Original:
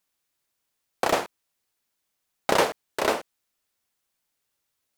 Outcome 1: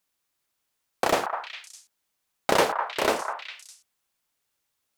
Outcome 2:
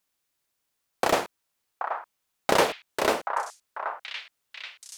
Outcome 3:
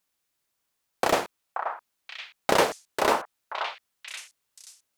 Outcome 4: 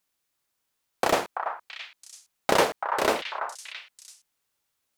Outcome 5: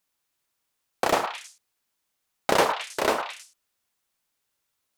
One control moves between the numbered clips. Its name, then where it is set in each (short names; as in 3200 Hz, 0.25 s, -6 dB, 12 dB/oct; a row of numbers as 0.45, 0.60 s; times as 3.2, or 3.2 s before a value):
delay with a stepping band-pass, time: 0.203, 0.779, 0.53, 0.334, 0.106 s